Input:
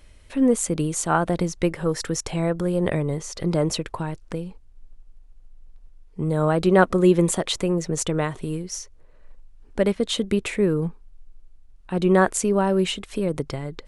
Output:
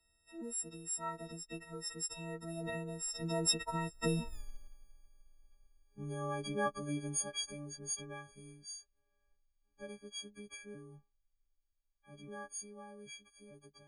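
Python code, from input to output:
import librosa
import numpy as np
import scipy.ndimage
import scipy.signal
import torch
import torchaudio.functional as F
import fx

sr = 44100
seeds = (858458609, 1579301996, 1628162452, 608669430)

y = fx.freq_snap(x, sr, grid_st=6)
y = fx.doppler_pass(y, sr, speed_mps=22, closest_m=1.2, pass_at_s=4.36)
y = y * librosa.db_to_amplitude(11.0)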